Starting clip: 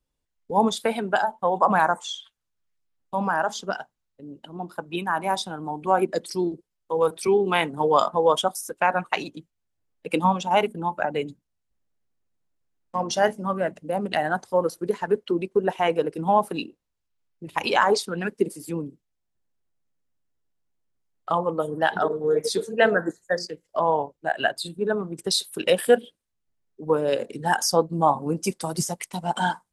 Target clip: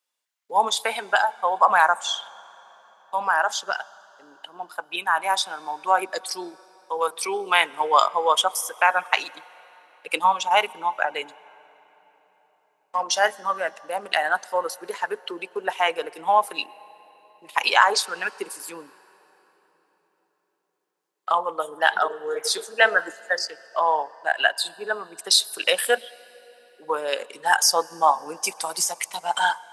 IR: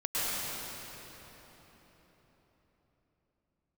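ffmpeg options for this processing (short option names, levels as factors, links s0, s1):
-filter_complex "[0:a]highpass=950,asplit=2[s0][s1];[1:a]atrim=start_sample=2205[s2];[s1][s2]afir=irnorm=-1:irlink=0,volume=0.0251[s3];[s0][s3]amix=inputs=2:normalize=0,volume=2"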